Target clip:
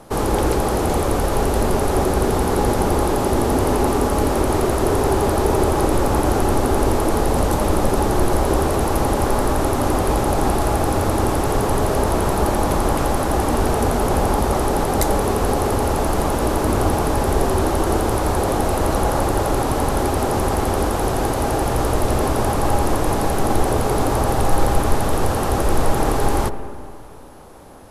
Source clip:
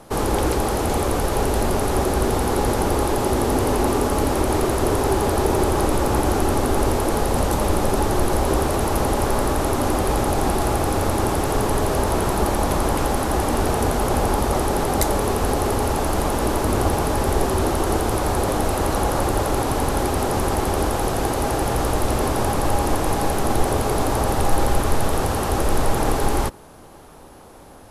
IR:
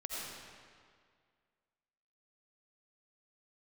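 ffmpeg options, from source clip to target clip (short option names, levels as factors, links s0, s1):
-filter_complex "[0:a]asplit=2[s0][s1];[1:a]atrim=start_sample=2205,lowpass=2000[s2];[s1][s2]afir=irnorm=-1:irlink=0,volume=0.355[s3];[s0][s3]amix=inputs=2:normalize=0"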